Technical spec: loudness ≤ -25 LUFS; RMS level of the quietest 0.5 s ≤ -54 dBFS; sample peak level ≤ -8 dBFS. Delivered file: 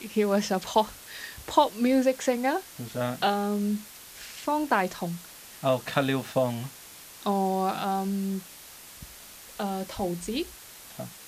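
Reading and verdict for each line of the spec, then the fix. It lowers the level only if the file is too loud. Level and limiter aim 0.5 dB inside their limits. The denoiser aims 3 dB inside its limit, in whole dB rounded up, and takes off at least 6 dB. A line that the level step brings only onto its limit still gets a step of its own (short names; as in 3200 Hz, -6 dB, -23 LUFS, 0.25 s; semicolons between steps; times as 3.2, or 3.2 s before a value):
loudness -28.0 LUFS: OK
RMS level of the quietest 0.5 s -47 dBFS: fail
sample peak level -6.5 dBFS: fail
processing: denoiser 10 dB, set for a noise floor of -47 dBFS; limiter -8.5 dBFS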